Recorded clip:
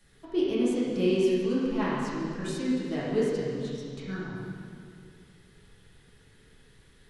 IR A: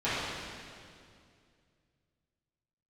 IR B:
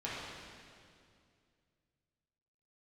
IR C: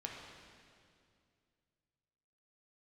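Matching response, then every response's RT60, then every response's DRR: B; 2.3 s, 2.3 s, 2.3 s; -14.5 dB, -9.0 dB, -1.5 dB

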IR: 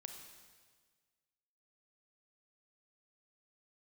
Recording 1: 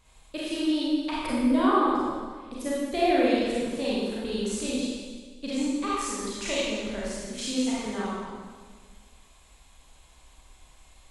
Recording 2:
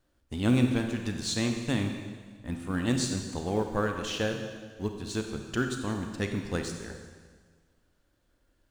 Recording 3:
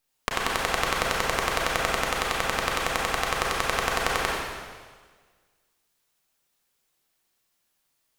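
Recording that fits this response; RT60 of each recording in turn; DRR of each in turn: 2; 1.6 s, 1.6 s, 1.6 s; -8.0 dB, 4.0 dB, -3.5 dB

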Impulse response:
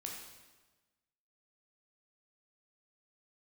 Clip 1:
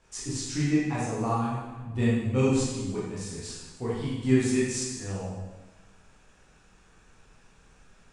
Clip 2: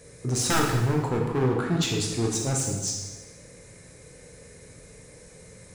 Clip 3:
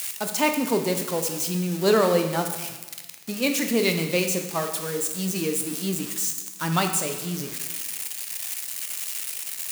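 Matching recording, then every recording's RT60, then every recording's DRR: 2; 1.3 s, 1.3 s, 1.3 s; -7.5 dB, -1.0 dB, 5.0 dB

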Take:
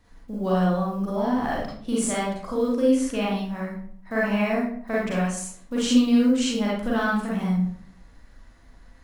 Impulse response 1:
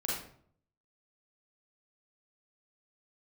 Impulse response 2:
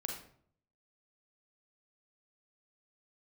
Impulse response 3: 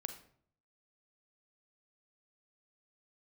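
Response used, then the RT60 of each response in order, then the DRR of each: 1; 0.60 s, 0.60 s, 0.60 s; -6.0 dB, 0.5 dB, 7.0 dB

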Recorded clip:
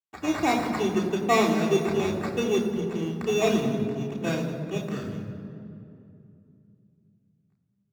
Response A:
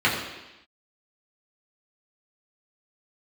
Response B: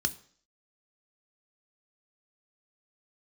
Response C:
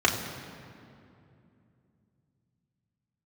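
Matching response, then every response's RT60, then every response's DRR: C; 0.95 s, 0.55 s, 2.6 s; -7.0 dB, 10.5 dB, -2.5 dB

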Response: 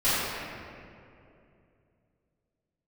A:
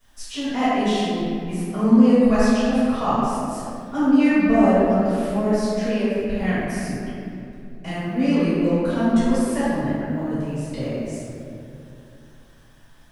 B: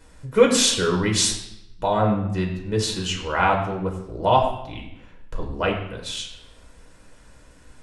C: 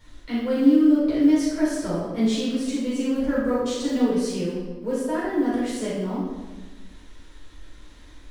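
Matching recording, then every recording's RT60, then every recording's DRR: A; 2.6 s, 0.85 s, 1.3 s; -17.5 dB, 0.5 dB, -9.5 dB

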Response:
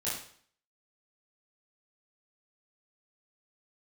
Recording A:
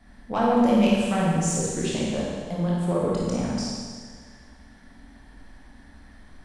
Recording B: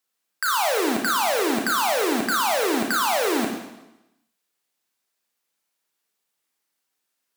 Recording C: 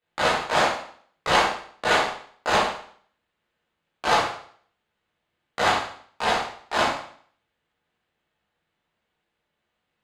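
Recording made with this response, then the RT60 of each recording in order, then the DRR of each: C; 1.7 s, 0.95 s, 0.55 s; -6.0 dB, 1.0 dB, -9.5 dB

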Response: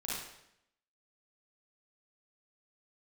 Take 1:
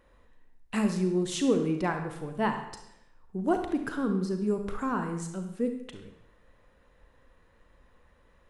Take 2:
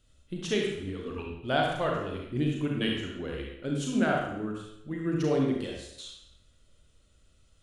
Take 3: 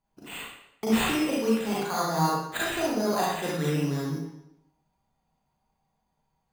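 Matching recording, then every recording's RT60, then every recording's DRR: 3; 0.80 s, 0.80 s, 0.80 s; 5.5 dB, -1.0 dB, -7.0 dB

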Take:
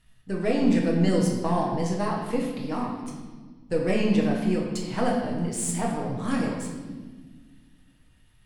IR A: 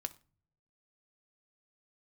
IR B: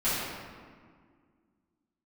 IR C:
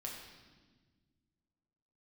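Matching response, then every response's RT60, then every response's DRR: C; no single decay rate, 1.9 s, 1.4 s; 10.0 dB, -14.5 dB, -2.5 dB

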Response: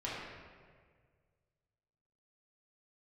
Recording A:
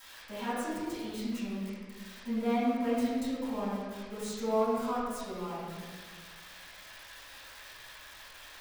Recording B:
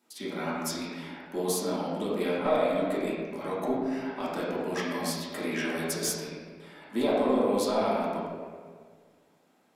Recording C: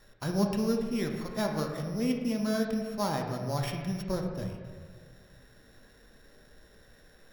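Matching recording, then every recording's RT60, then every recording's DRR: B; 1.8 s, 1.8 s, 1.8 s; -16.5 dB, -8.5 dB, 1.5 dB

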